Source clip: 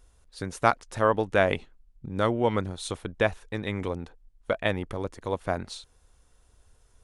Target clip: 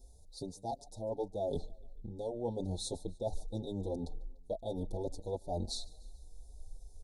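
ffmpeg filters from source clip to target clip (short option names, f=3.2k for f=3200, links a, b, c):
-filter_complex "[0:a]asubboost=boost=4.5:cutoff=54,areverse,acompressor=threshold=-33dB:ratio=10,areverse,asuperstop=centerf=1800:order=20:qfactor=0.64,aecho=1:1:147|294|441:0.0668|0.0354|0.0188,asplit=2[a][b];[b]adelay=5.6,afreqshift=2.8[c];[a][c]amix=inputs=2:normalize=1,volume=4dB"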